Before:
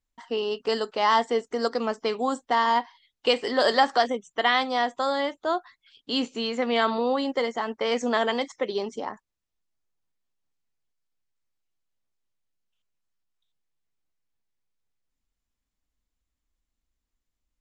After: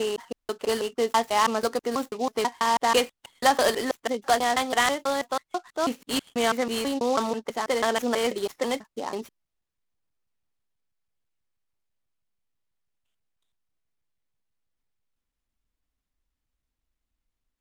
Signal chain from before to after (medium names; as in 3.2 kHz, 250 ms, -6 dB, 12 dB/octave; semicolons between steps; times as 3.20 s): slices played last to first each 163 ms, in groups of 3; delay time shaken by noise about 4.4 kHz, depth 0.031 ms